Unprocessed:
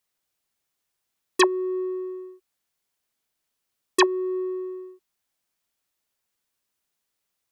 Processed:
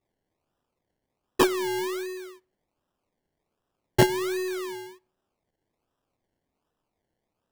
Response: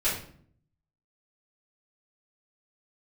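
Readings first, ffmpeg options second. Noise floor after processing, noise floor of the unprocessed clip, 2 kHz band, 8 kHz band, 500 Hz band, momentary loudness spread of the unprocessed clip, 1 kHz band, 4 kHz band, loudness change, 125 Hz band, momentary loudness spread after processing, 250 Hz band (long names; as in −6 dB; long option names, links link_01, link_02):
−83 dBFS, −80 dBFS, −2.5 dB, −2.0 dB, −1.5 dB, 17 LU, −2.0 dB, −3.0 dB, −1.5 dB, can't be measured, 17 LU, −1.0 dB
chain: -filter_complex "[0:a]acrusher=samples=28:mix=1:aa=0.000001:lfo=1:lforange=16.8:lforate=1.3,aeval=exprs='0.473*(cos(1*acos(clip(val(0)/0.473,-1,1)))-cos(1*PI/2))+0.00668*(cos(8*acos(clip(val(0)/0.473,-1,1)))-cos(8*PI/2))':channel_layout=same,asplit=2[link_01][link_02];[1:a]atrim=start_sample=2205[link_03];[link_02][link_03]afir=irnorm=-1:irlink=0,volume=-33dB[link_04];[link_01][link_04]amix=inputs=2:normalize=0,volume=-1.5dB"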